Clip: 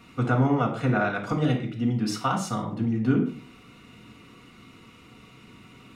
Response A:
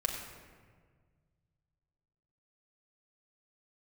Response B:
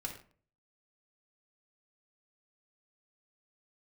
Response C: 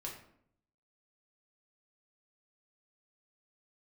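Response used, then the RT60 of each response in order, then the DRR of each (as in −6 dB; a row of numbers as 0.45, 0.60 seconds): B; 1.7 s, non-exponential decay, 0.65 s; −0.5, −0.5, −2.5 decibels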